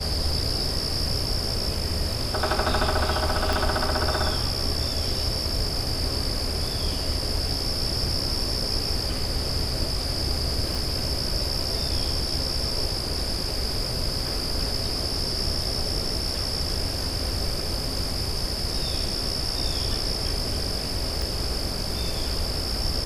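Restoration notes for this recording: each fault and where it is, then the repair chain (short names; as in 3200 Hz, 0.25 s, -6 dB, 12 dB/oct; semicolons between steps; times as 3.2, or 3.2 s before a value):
3.53 pop
10.75 pop
21.22 pop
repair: de-click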